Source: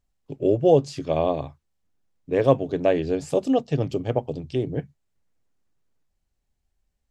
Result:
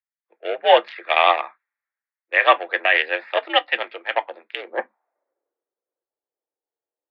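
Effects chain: local Wiener filter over 15 samples; high-pass sweep 1.8 kHz -> 390 Hz, 4.51–5.34 s; on a send at -13 dB: reverberation, pre-delay 4 ms; on the sum: mistuned SSB +68 Hz 200–3300 Hz; loudness maximiser +24 dB; three bands expanded up and down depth 70%; trim -3.5 dB

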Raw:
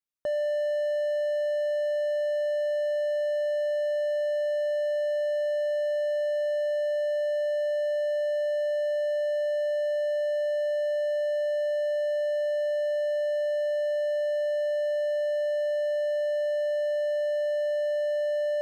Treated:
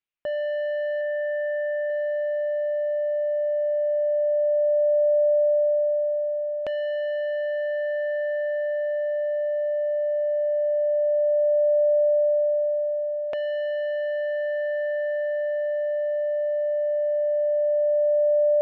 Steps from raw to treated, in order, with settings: 1.01–1.90 s: overdrive pedal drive 10 dB, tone 1.4 kHz, clips at -22 dBFS; LFO low-pass saw down 0.15 Hz 410–2800 Hz

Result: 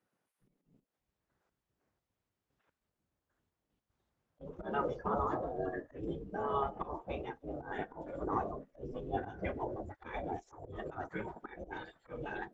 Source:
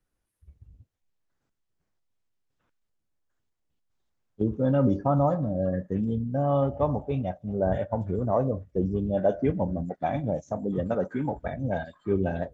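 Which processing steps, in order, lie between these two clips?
slow attack 145 ms; treble shelf 2.7 kHz -11.5 dB; spectral gate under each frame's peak -15 dB weak; trim +5 dB

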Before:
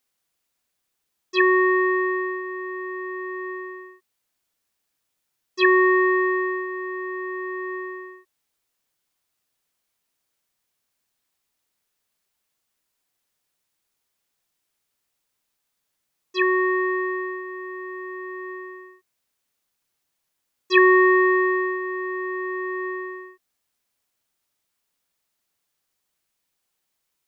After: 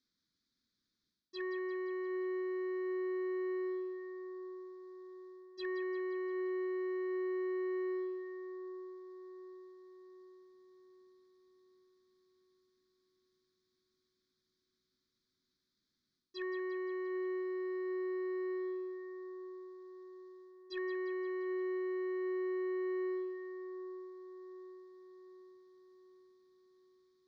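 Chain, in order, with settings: graphic EQ 250/500/1000/2000/4000 Hz +11/-5/-4/-6/+8 dB; reverse; compression 20:1, threshold -31 dBFS, peak gain reduction 20.5 dB; reverse; static phaser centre 2.8 kHz, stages 6; in parallel at -6 dB: one-sided clip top -40 dBFS; on the sum: distance through air 120 m; two-band feedback delay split 1.3 kHz, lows 754 ms, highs 174 ms, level -11 dB; trim -5 dB

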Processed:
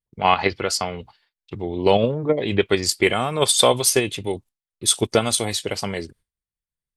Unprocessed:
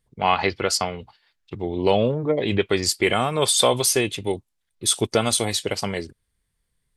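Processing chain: gate with hold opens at -49 dBFS; in parallel at -1 dB: level held to a coarse grid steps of 19 dB; on the sum: trim -2 dB

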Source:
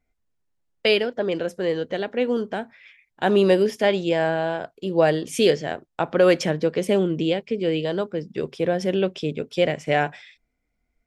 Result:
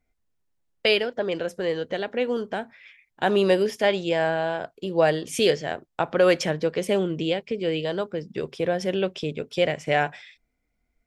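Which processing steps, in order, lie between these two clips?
dynamic bell 250 Hz, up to -5 dB, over -31 dBFS, Q 0.81

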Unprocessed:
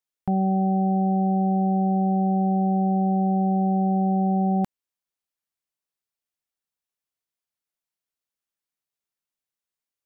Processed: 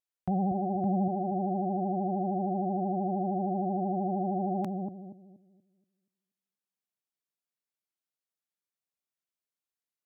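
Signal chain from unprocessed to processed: high-pass 41 Hz 24 dB/octave, from 0.84 s 120 Hz; vibrato 13 Hz 87 cents; bucket-brigade echo 238 ms, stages 1024, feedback 33%, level -4 dB; trim -6 dB

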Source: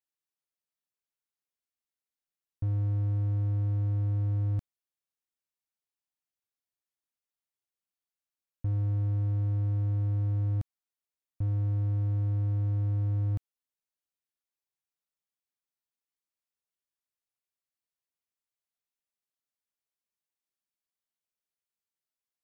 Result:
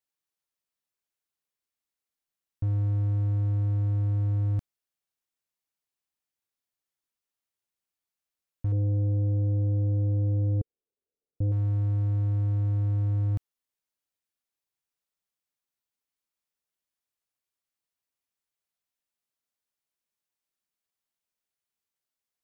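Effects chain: 8.72–11.52 s: resonant low-pass 450 Hz, resonance Q 4.9; trim +2.5 dB

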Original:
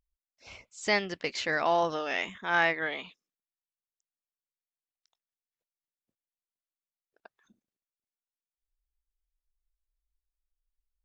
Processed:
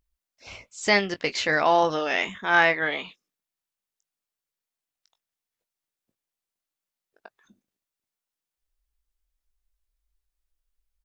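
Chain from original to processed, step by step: doubling 20 ms -11.5 dB; trim +6 dB

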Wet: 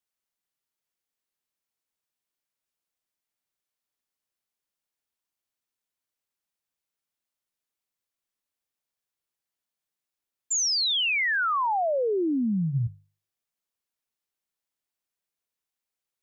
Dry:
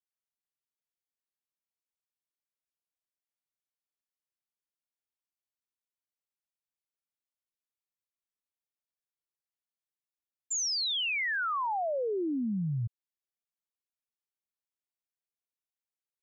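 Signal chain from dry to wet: hum notches 50/100/150 Hz; trim +6 dB

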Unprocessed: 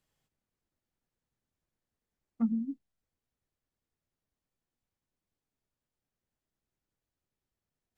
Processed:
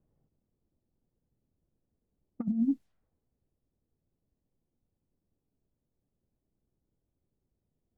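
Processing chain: level-controlled noise filter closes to 450 Hz, open at -37 dBFS; compressor with a negative ratio -34 dBFS, ratio -0.5; trim +6.5 dB

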